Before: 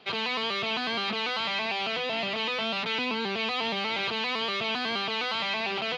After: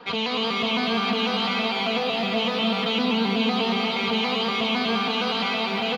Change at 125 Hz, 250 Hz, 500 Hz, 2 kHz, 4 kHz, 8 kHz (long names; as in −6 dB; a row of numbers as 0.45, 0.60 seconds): +11.0, +12.5, +6.5, +2.0, +4.5, +4.0 decibels